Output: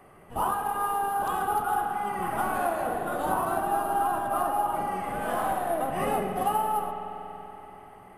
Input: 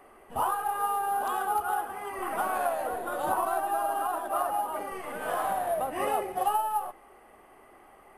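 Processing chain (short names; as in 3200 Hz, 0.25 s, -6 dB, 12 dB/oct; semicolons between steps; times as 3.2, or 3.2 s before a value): octaver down 1 oct, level +3 dB; spring tank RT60 3.8 s, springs 47 ms, chirp 20 ms, DRR 4.5 dB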